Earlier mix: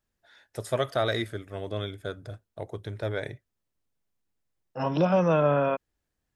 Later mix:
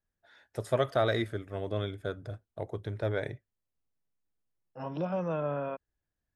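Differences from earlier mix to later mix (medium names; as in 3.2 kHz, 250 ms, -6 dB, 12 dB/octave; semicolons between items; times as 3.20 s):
second voice -9.5 dB; master: add treble shelf 2.7 kHz -7.5 dB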